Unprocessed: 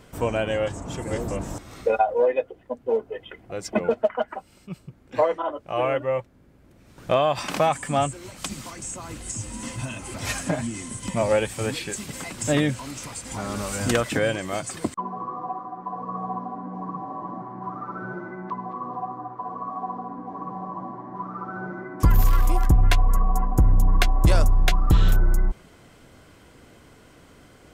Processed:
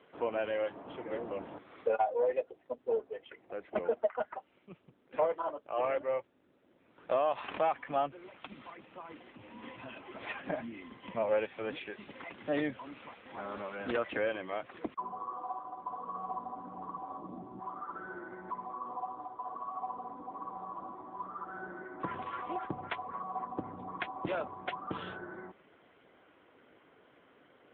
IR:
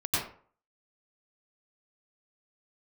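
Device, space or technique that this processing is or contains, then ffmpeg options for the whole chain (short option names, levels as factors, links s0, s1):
telephone: -filter_complex "[0:a]asettb=1/sr,asplit=3[s0][s1][s2];[s0]atrim=end=17.174[s3];[s1]atrim=start=17.17:end=17.59,asetpts=PTS-STARTPTS,afade=t=in:d=0.004:c=qsin,afade=t=out:st=0.416:d=0.004:c=qsin,equalizer=f=125:t=o:w=1:g=11,equalizer=f=250:t=o:w=1:g=4,equalizer=f=1000:t=o:w=1:g=-7,equalizer=f=2000:t=o:w=1:g=-7[s4];[s2]atrim=start=17.586[s5];[s3][s4]acrossfade=d=0.004:c1=hsin:c2=qsin[s6];[s6][s5]acrossfade=d=0.004:c1=qsin:c2=hsin,asettb=1/sr,asplit=3[s7][s8][s9];[s7]atrim=end=19.284[s10];[s8]atrim=start=19.28:end=20.01,asetpts=PTS-STARTPTS,afade=t=in:d=0.004:c=qsin,afade=t=out:st=0.726:d=0.004:c=qsin,lowpass=4900[s11];[s9]atrim=start=20.006[s12];[s10][s11]acrossfade=d=0.004:c1=hsin:c2=qsin[s13];[s13][s12]acrossfade=d=0.004:c1=qsin:c2=hsin,highpass=47,highpass=320,lowpass=3300,asoftclip=type=tanh:threshold=0.251,volume=0.473" -ar 8000 -c:a libopencore_amrnb -b:a 7950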